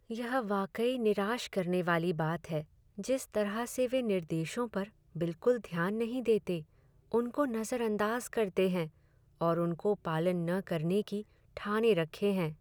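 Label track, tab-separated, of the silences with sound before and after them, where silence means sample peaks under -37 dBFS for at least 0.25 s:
2.610000	2.990000	silence
4.840000	5.160000	silence
6.600000	7.140000	silence
8.860000	9.410000	silence
11.210000	11.570000	silence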